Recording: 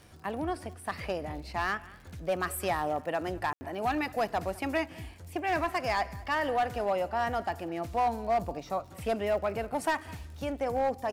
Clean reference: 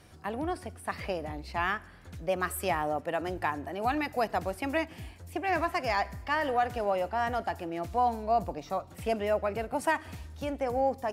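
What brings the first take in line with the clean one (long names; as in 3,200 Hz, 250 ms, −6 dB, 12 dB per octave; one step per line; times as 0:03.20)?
clipped peaks rebuilt −22 dBFS
click removal
ambience match 0:03.53–0:03.61
echo removal 206 ms −22.5 dB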